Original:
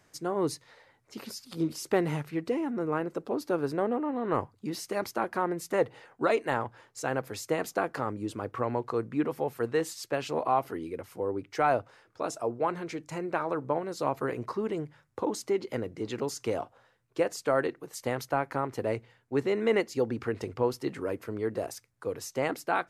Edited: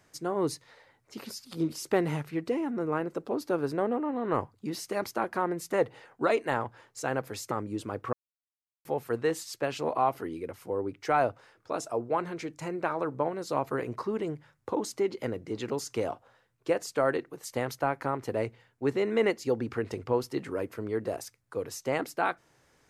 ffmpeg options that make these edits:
-filter_complex "[0:a]asplit=4[s0][s1][s2][s3];[s0]atrim=end=7.512[s4];[s1]atrim=start=8.008:end=8.63,asetpts=PTS-STARTPTS,afade=t=out:st=0.618:d=0.004:c=hsin[s5];[s2]atrim=start=8.63:end=9.35,asetpts=PTS-STARTPTS,volume=0[s6];[s3]atrim=start=9.35,asetpts=PTS-STARTPTS,afade=t=in:d=0.004:c=hsin[s7];[s5][s6][s7]concat=n=3:v=0:a=1[s8];[s4][s8]acrossfade=d=0.004:c1=hsin:c2=hsin"

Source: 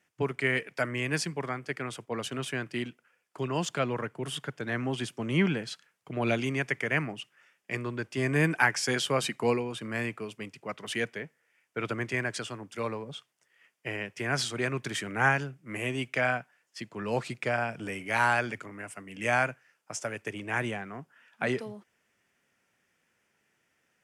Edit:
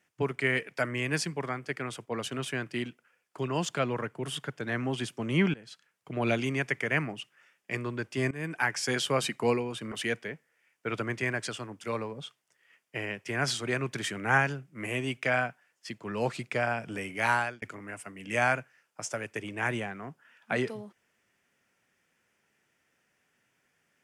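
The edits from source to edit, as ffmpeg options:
-filter_complex "[0:a]asplit=5[s0][s1][s2][s3][s4];[s0]atrim=end=5.54,asetpts=PTS-STARTPTS,afade=t=out:st=5.536:d=0.004:c=hsin:silence=0.0944061[s5];[s1]atrim=start=5.54:end=8.31,asetpts=PTS-STARTPTS,afade=t=in:d=0.57:silence=0.0944061,afade=t=out:st=2.766:d=0.004:c=hsin:silence=0.1[s6];[s2]atrim=start=8.31:end=9.922,asetpts=PTS-STARTPTS,afade=t=in:d=0.88:c=qsin:silence=0.1[s7];[s3]atrim=start=10.828:end=18.53,asetpts=PTS-STARTPTS,afade=t=out:st=7.372:d=0.33[s8];[s4]atrim=start=18.53,asetpts=PTS-STARTPTS,afade=t=in:d=0.004:c=hsin[s9];[s5][s6][s7]concat=n=3:v=0:a=1[s10];[s8][s9]concat=n=2:v=0:a=1[s11];[s10][s11]acrossfade=d=0.004:c1=hsin:c2=hsin"

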